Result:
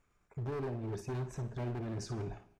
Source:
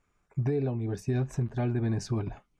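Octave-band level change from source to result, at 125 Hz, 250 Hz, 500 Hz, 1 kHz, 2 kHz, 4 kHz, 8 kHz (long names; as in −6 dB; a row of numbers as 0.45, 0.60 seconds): −9.5, −10.0, −7.0, −3.5, −6.0, −5.0, −5.0 decibels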